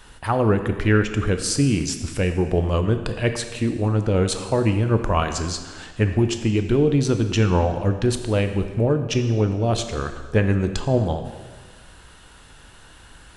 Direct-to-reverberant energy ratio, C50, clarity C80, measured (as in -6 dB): 7.0 dB, 8.5 dB, 10.0 dB